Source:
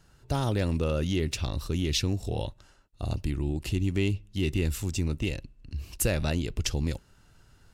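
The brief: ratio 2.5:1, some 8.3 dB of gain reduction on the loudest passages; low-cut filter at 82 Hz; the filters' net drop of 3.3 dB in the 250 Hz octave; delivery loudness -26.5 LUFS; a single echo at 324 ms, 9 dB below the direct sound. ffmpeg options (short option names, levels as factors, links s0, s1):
-af "highpass=82,equalizer=f=250:t=o:g=-4.5,acompressor=threshold=0.0126:ratio=2.5,aecho=1:1:324:0.355,volume=4.22"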